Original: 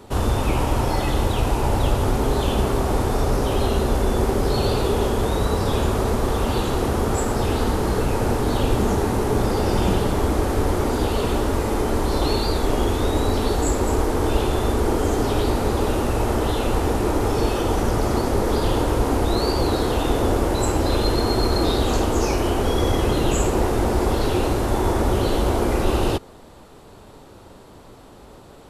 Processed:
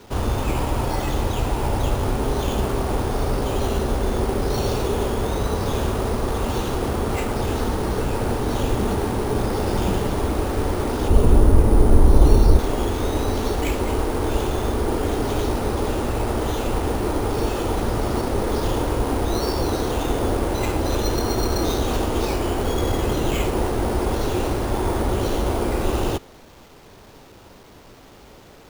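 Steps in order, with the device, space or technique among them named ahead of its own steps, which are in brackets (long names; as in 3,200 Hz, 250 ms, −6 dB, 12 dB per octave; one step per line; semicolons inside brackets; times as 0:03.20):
0:11.08–0:12.59: spectral tilt −3 dB per octave
early 8-bit sampler (sample-rate reduction 10,000 Hz, jitter 0%; bit reduction 8 bits)
level −2 dB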